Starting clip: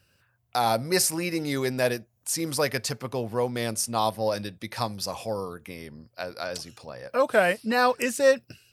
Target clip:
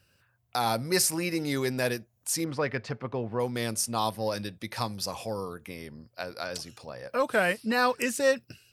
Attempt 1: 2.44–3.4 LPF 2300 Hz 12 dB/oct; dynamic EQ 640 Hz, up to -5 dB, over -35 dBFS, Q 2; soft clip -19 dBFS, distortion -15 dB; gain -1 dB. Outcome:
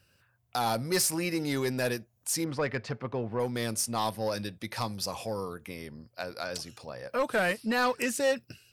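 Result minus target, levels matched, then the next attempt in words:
soft clip: distortion +15 dB
2.44–3.4 LPF 2300 Hz 12 dB/oct; dynamic EQ 640 Hz, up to -5 dB, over -35 dBFS, Q 2; soft clip -9 dBFS, distortion -29 dB; gain -1 dB

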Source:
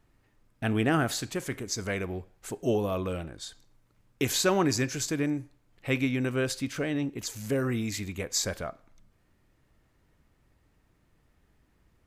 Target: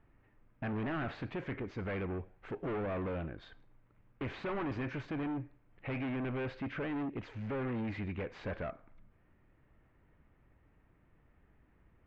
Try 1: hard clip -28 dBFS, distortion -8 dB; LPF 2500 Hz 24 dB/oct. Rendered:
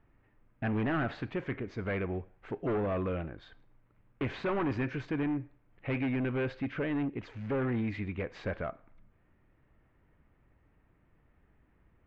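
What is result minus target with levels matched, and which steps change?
hard clip: distortion -4 dB
change: hard clip -34.5 dBFS, distortion -4 dB

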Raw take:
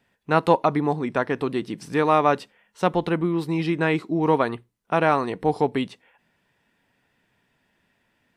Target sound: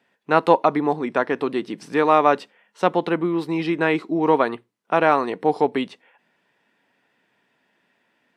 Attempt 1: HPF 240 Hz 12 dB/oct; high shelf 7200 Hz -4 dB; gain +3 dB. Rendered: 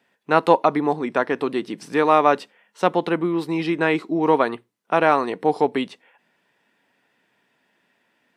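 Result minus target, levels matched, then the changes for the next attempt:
8000 Hz band +3.0 dB
change: high shelf 7200 Hz -10 dB

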